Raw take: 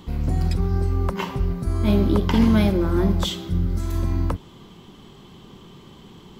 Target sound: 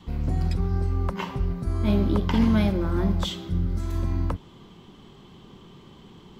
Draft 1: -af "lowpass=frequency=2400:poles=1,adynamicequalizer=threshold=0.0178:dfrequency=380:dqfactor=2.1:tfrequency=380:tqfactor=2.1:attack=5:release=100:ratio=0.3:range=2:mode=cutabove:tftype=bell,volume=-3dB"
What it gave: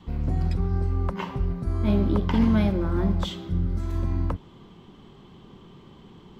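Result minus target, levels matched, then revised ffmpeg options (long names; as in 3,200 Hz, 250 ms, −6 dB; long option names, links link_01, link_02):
8,000 Hz band −5.5 dB
-af "lowpass=frequency=5800:poles=1,adynamicequalizer=threshold=0.0178:dfrequency=380:dqfactor=2.1:tfrequency=380:tqfactor=2.1:attack=5:release=100:ratio=0.3:range=2:mode=cutabove:tftype=bell,volume=-3dB"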